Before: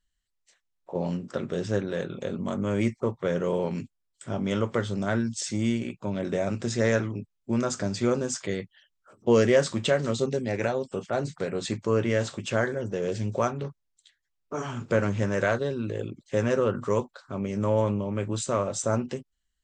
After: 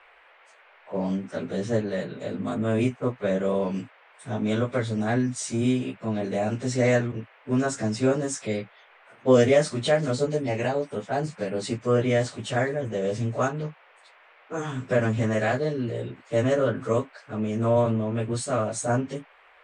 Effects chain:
phase-vocoder pitch shift without resampling +1.5 semitones
noise in a band 470–2,500 Hz −59 dBFS
level +3.5 dB

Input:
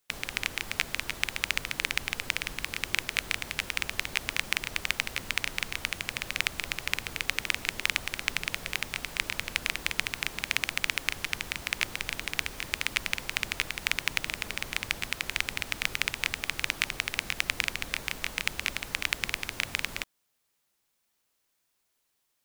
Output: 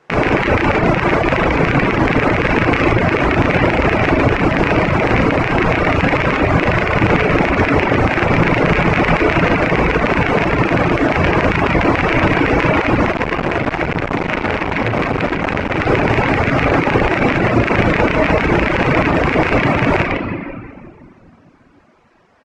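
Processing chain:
parametric band 3,600 Hz −9 dB 1 octave
compressor whose output falls as the input rises −37 dBFS, ratio −0.5
high-pass filter 150 Hz 6 dB per octave
head-to-tape spacing loss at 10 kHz 43 dB
mains-hum notches 50/100/150/200/250 Hz
loudspeakers that aren't time-aligned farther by 12 metres −8 dB, 50 metres −10 dB
convolution reverb RT60 2.1 s, pre-delay 6 ms, DRR 0.5 dB
reverb reduction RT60 0.82 s
boost into a limiter +34.5 dB
0:13.12–0:15.80: saturating transformer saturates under 660 Hz
level −1 dB

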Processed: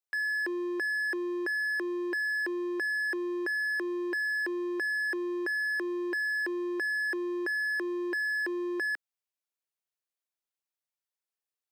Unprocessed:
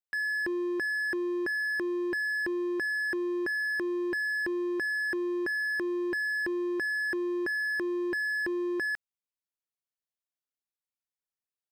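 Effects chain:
high-pass filter 330 Hz 24 dB per octave

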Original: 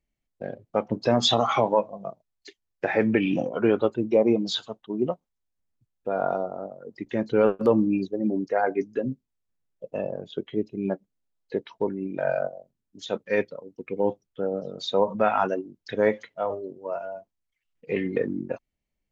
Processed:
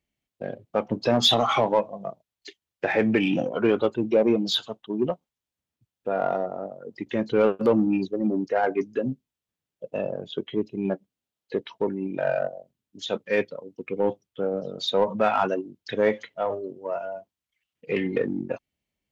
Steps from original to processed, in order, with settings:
high-pass filter 67 Hz
parametric band 3,100 Hz +5 dB 0.69 octaves
in parallel at −4 dB: soft clipping −21 dBFS, distortion −9 dB
on the sum: level −2.5 dB

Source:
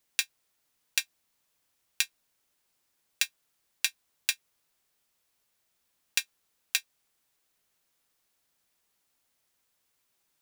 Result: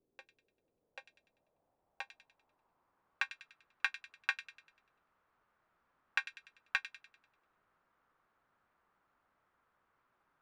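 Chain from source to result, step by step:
low-pass filter sweep 400 Hz → 1,300 Hz, 0:00.11–0:03.41
delay with a high-pass on its return 98 ms, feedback 45%, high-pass 2,600 Hz, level −9 dB
level +4 dB

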